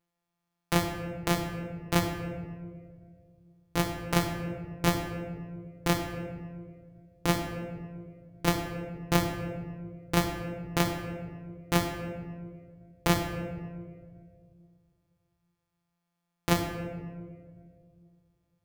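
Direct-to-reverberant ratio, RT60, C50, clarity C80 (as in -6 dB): 2.5 dB, 2.0 s, 5.0 dB, 6.5 dB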